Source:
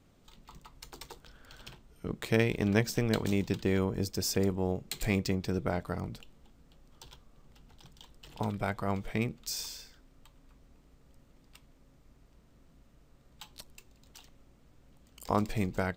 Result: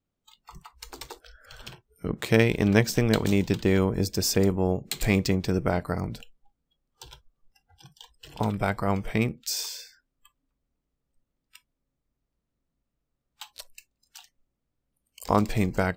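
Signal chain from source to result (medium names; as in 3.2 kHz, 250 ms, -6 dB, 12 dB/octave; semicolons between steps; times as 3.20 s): spectral noise reduction 27 dB; trim +6.5 dB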